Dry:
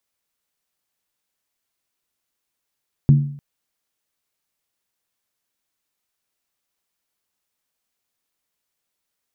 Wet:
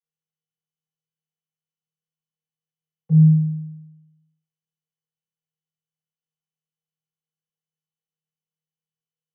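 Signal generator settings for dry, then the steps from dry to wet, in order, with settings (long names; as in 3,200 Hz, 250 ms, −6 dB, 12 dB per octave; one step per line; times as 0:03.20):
struck skin length 0.30 s, lowest mode 143 Hz, decay 0.58 s, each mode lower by 10.5 dB, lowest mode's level −6 dB
downward compressor, threshold −15 dBFS
channel vocoder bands 16, square 158 Hz
on a send: flutter between parallel walls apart 4.4 metres, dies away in 1.1 s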